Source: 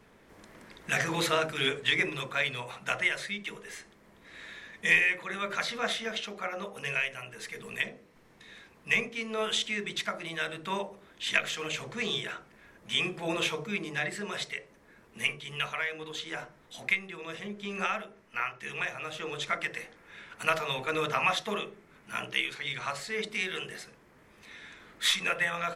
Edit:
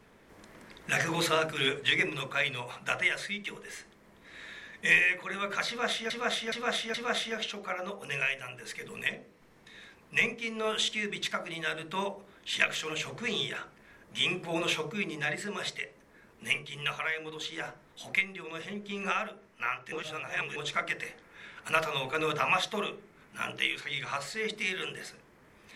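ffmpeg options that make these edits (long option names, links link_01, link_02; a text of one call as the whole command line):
ffmpeg -i in.wav -filter_complex "[0:a]asplit=6[link_01][link_02][link_03][link_04][link_05][link_06];[link_01]atrim=end=6.102[link_07];[link_02]atrim=start=5.678:end=6.102[link_08];[link_03]atrim=start=5.678:end=6.102[link_09];[link_04]atrim=start=5.678:end=18.662[link_10];[link_05]atrim=start=18.658:end=19.302,asetpts=PTS-STARTPTS,areverse[link_11];[link_06]atrim=start=19.298[link_12];[link_07][link_08]acrossfade=duration=0.004:curve1=hsin:curve2=hsin[link_13];[link_13][link_09]acrossfade=duration=0.004:curve1=hsin:curve2=hsin[link_14];[link_14][link_10]acrossfade=duration=0.004:curve1=hsin:curve2=hsin[link_15];[link_15][link_11]acrossfade=duration=0.004:curve1=hsin:curve2=hsin[link_16];[link_16][link_12]acrossfade=duration=0.004:curve1=hsin:curve2=hsin" out.wav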